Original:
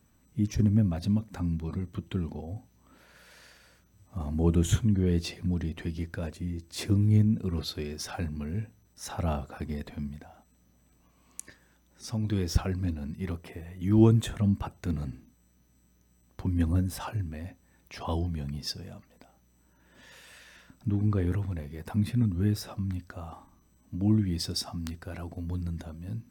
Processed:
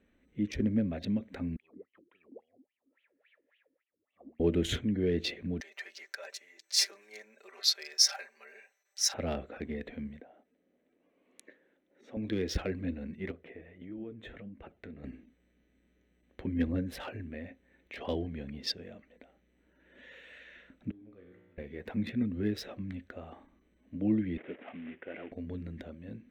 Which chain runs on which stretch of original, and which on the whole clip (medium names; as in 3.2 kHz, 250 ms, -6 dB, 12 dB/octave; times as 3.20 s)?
1.56–4.40 s: band-stop 1.5 kHz, Q 6.7 + wah-wah 3.6 Hz 270–3100 Hz, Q 11
5.60–9.14 s: high-pass 750 Hz 24 dB/octave + resonant high shelf 4.3 kHz +8.5 dB, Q 3 + comb 5.1 ms, depth 95%
10.20–12.17 s: high-pass 450 Hz + tilt shelf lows +9.5 dB, about 640 Hz
13.31–15.04 s: treble shelf 5.3 kHz -11.5 dB + compression 4:1, threshold -34 dBFS + flange 1.6 Hz, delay 2.7 ms, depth 7.2 ms, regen +68%
20.91–21.58 s: gate -23 dBFS, range -10 dB + treble shelf 5.7 kHz +11.5 dB + feedback comb 60 Hz, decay 1.4 s, mix 90%
24.37–25.32 s: CVSD coder 16 kbps + high-pass 230 Hz
whole clip: local Wiener filter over 9 samples; graphic EQ 125/250/500/1000/2000/4000/8000 Hz -11/+5/+10/-9/+11/+10/-4 dB; trim -5.5 dB